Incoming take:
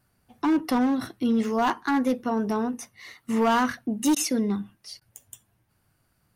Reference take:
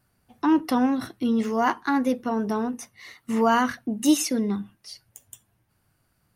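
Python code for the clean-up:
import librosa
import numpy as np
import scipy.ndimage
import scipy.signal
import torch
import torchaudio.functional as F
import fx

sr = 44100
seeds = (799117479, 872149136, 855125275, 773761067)

y = fx.fix_declip(x, sr, threshold_db=-17.0)
y = fx.fix_interpolate(y, sr, at_s=(4.15, 5.0), length_ms=12.0)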